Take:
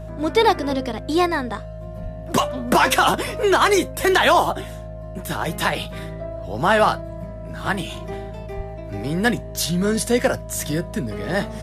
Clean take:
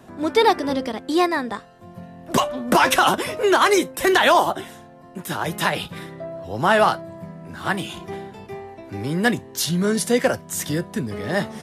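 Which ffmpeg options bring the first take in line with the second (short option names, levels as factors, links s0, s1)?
-filter_complex "[0:a]bandreject=f=53.9:t=h:w=4,bandreject=f=107.8:t=h:w=4,bandreject=f=161.7:t=h:w=4,bandreject=f=630:w=30,asplit=3[s0][s1][s2];[s0]afade=t=out:st=2.02:d=0.02[s3];[s1]highpass=f=140:w=0.5412,highpass=f=140:w=1.3066,afade=t=in:st=2.02:d=0.02,afade=t=out:st=2.14:d=0.02[s4];[s2]afade=t=in:st=2.14:d=0.02[s5];[s3][s4][s5]amix=inputs=3:normalize=0,asplit=3[s6][s7][s8];[s6]afade=t=out:st=8.56:d=0.02[s9];[s7]highpass=f=140:w=0.5412,highpass=f=140:w=1.3066,afade=t=in:st=8.56:d=0.02,afade=t=out:st=8.68:d=0.02[s10];[s8]afade=t=in:st=8.68:d=0.02[s11];[s9][s10][s11]amix=inputs=3:normalize=0"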